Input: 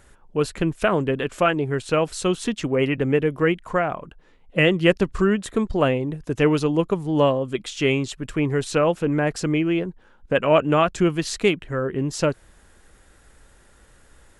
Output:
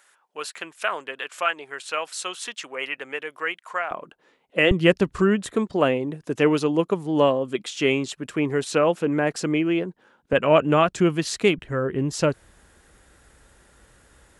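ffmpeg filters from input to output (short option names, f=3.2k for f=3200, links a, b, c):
-af "asetnsamples=n=441:p=0,asendcmd='3.91 highpass f 300;4.71 highpass f 76;5.52 highpass f 190;10.33 highpass f 94;11.58 highpass f 42',highpass=1k"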